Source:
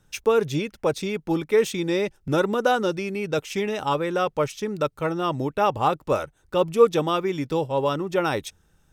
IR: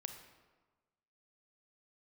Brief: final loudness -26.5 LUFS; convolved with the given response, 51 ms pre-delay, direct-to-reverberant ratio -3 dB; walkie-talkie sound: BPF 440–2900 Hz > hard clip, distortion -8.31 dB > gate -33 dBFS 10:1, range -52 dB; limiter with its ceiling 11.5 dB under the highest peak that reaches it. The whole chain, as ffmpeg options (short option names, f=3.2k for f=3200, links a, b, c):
-filter_complex "[0:a]alimiter=limit=-16dB:level=0:latency=1,asplit=2[a][b];[1:a]atrim=start_sample=2205,adelay=51[c];[b][c]afir=irnorm=-1:irlink=0,volume=6dB[d];[a][d]amix=inputs=2:normalize=0,highpass=440,lowpass=2.9k,asoftclip=type=hard:threshold=-24dB,agate=range=-52dB:threshold=-33dB:ratio=10,volume=1.5dB"